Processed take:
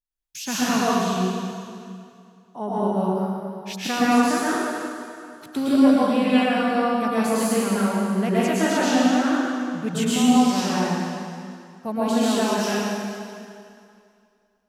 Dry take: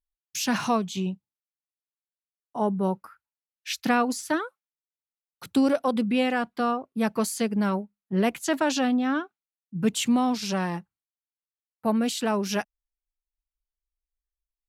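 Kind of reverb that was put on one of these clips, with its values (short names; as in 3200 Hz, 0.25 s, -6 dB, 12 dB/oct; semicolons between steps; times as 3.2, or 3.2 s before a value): plate-style reverb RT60 2.4 s, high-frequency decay 0.9×, pre-delay 0.1 s, DRR -9.5 dB; gain -5 dB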